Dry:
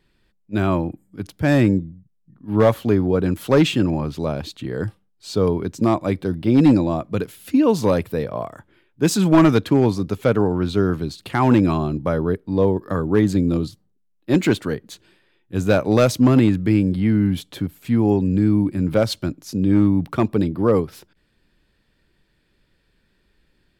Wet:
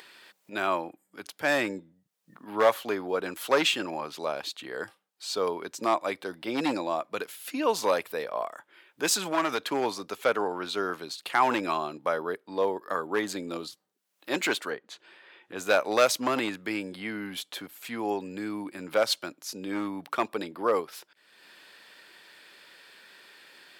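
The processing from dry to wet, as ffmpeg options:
-filter_complex "[0:a]asettb=1/sr,asplit=3[s0][s1][s2];[s0]atrim=end=9.114[s3];[s1]atrim=start=9.11:end=9.65,asetpts=PTS-STARTPTS,afade=t=in:d=0.004:c=qsin,afade=t=out:st=0.536:d=0.004:c=qsin,acompressor=threshold=0.2:ratio=6:attack=3.2:release=140:knee=1:detection=peak[s4];[s2]atrim=start=9.646[s5];[s3][s4]acrossfade=d=0.004:c1=hsin:c2=qsin[s6];[s6][s5]acrossfade=d=0.004:c1=qsin:c2=hsin,asplit=3[s7][s8][s9];[s7]afade=t=out:st=14.69:d=0.02[s10];[s8]aemphasis=mode=reproduction:type=75fm,afade=t=in:st=14.69:d=0.02,afade=t=out:st=15.57:d=0.02[s11];[s9]afade=t=in:st=15.57:d=0.02[s12];[s10][s11][s12]amix=inputs=3:normalize=0,highpass=720,acompressor=mode=upward:threshold=0.0141:ratio=2.5"

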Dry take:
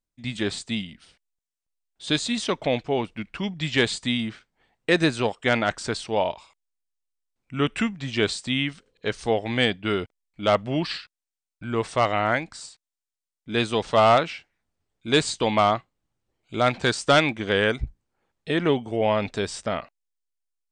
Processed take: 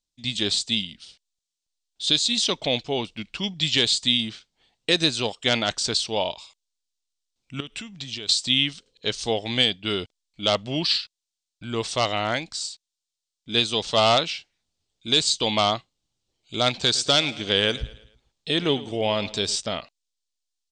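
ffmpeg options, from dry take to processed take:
-filter_complex "[0:a]asettb=1/sr,asplit=3[s0][s1][s2];[s0]atrim=end=7.604[s3];[s1]atrim=start=7.6:end=8.29,asetpts=PTS-STARTPTS,afade=t=in:d=0.004:c=qsin,afade=t=out:st=0.686:d=0.004:c=qsin,acompressor=threshold=0.02:ratio=6:attack=3.2:release=140:knee=1:detection=peak[s4];[s2]atrim=start=8.286[s5];[s3][s4]acrossfade=d=0.004:c1=hsin:c2=qsin[s6];[s6][s5]acrossfade=d=0.004:c1=qsin:c2=hsin,asplit=3[s7][s8][s9];[s7]afade=t=out:st=16.82:d=0.02[s10];[s8]aecho=1:1:109|218|327|436:0.126|0.0541|0.0233|0.01,afade=t=in:st=16.82:d=0.02,afade=t=out:st=19.55:d=0.02[s11];[s9]afade=t=in:st=19.55:d=0.02[s12];[s10][s11][s12]amix=inputs=3:normalize=0,highshelf=f=2600:t=q:w=1.5:g=11,alimiter=limit=0.596:level=0:latency=1:release=373,lowpass=f=8100:w=0.5412,lowpass=f=8100:w=1.3066,volume=0.794"

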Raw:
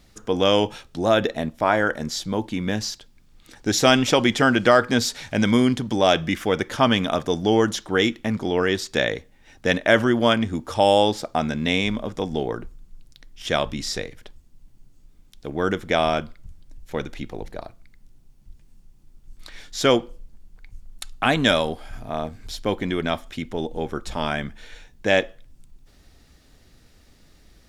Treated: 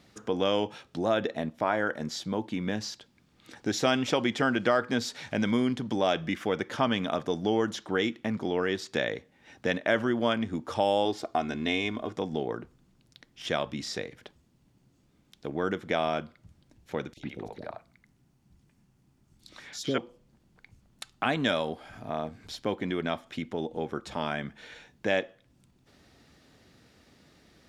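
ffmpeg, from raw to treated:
-filter_complex "[0:a]asettb=1/sr,asplit=3[s0][s1][s2];[s0]atrim=end=11.054[s3];[s1]atrim=start=11.05:end=12.15,asetpts=PTS-STARTPTS,afade=t=in:d=0.004:c=qsin,afade=t=out:st=1.096:d=0.004:c=qsin,aecho=1:1:2.8:0.59,atrim=end_sample=48510[s4];[s2]atrim=start=12.146[s5];[s3][s4]acrossfade=d=0.004:c1=hsin:c2=qsin[s6];[s6][s5]acrossfade=d=0.004:c1=qsin:c2=hsin,asettb=1/sr,asplit=3[s7][s8][s9];[s7]atrim=end=17.134[s10];[s8]atrim=start=17.13:end=19.98,asetpts=PTS-STARTPTS,afade=t=in:d=0.004:c=qsin,afade=t=out:st=2.846:d=0.004:c=qsin,acrossover=split=460|3700[s11][s12][s13];[s11]adelay=40[s14];[s12]adelay=100[s15];[s14][s15][s13]amix=inputs=3:normalize=0,atrim=end_sample=125685[s16];[s9]atrim=start=19.976[s17];[s10][s16]acrossfade=d=0.004:c1=hsin:c2=qsin[s18];[s18][s17]acrossfade=d=0.004:c1=qsin:c2=hsin,acompressor=threshold=0.0158:ratio=1.5,highpass=120,highshelf=f=6400:g=-10.5"

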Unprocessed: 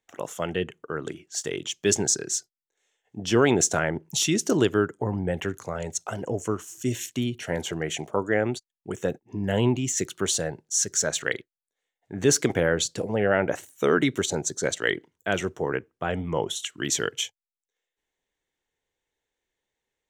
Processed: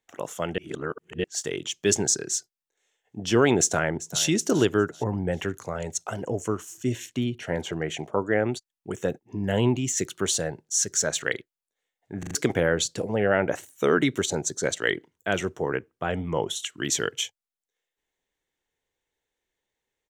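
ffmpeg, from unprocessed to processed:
-filter_complex "[0:a]asplit=2[s0][s1];[s1]afade=t=in:st=3.6:d=0.01,afade=t=out:st=4.25:d=0.01,aecho=0:1:390|780|1170:0.158489|0.0554713|0.0194149[s2];[s0][s2]amix=inputs=2:normalize=0,asettb=1/sr,asplit=3[s3][s4][s5];[s3]atrim=end=6.774[s6];[s4]atrim=start=6.77:end=8.49,asetpts=PTS-STARTPTS,afade=t=in:d=0.004:c=qsin,afade=t=out:st=1.716:d=0.004:c=qsin,aemphasis=mode=reproduction:type=cd[s7];[s5]atrim=start=8.486[s8];[s6][s7]acrossfade=d=0.004:c1=hsin:c2=qsin[s9];[s9][s8]acrossfade=d=0.004:c1=qsin:c2=hsin,asplit=7[s10][s11][s12][s13][s14][s15][s16];[s10]atrim=end=0.582[s17];[s11]atrim=start=0.578:end=1.242,asetpts=PTS-STARTPTS,areverse[s18];[s12]atrim=start=1.238:end=12.232[s19];[s13]atrim=start=12.188:end=12.232[s20];[s14]atrim=start=12.188:end=12.232[s21];[s15]atrim=start=12.188:end=12.232[s22];[s16]atrim=start=12.348[s23];[s17][s18]acrossfade=d=0.004:c1=hsin:c2=hsin[s24];[s24][s19]acrossfade=d=0.004:c1=hsin:c2=hsin[s25];[s25][s20]acrossfade=d=0.004:c1=hsin:c2=hsin[s26];[s26][s21]acrossfade=d=0.004:c1=hsin:c2=hsin[s27];[s27][s22]acrossfade=d=0.004:c1=hsin:c2=hsin[s28];[s28][s23]acrossfade=d=0.004:c1=hsin:c2=hsin"

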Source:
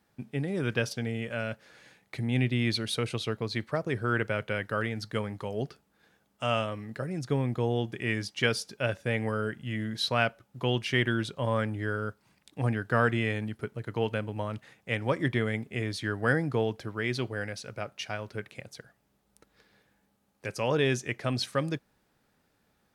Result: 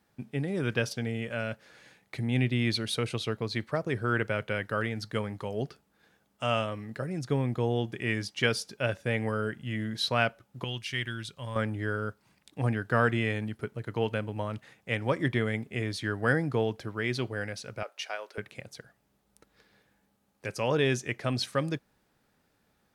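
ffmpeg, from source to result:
-filter_complex "[0:a]asettb=1/sr,asplit=3[s0][s1][s2];[s0]atrim=end=10.644[s3];[s1]atrim=start=10.64:end=11.56,asetpts=PTS-STARTPTS,afade=t=in:d=0.004:c=qsin,afade=t=out:st=0.916:d=0.004:c=qsin,equalizer=f=430:w=0.31:g=-13.5[s4];[s2]atrim=start=11.556[s5];[s3][s4]acrossfade=d=0.004:c1=hsin:c2=qsin[s6];[s6][s5]acrossfade=d=0.004:c1=qsin:c2=hsin,asettb=1/sr,asplit=3[s7][s8][s9];[s7]atrim=end=17.834[s10];[s8]atrim=start=17.83:end=18.38,asetpts=PTS-STARTPTS,afade=t=in:d=0.004:c=qsin,afade=t=out:st=0.546:d=0.004:c=qsin,highpass=f=430:w=0.5412,highpass=f=430:w=1.3066[s11];[s9]atrim=start=18.376[s12];[s10][s11]acrossfade=d=0.004:c1=hsin:c2=qsin[s13];[s13][s12]acrossfade=d=0.004:c1=qsin:c2=hsin"

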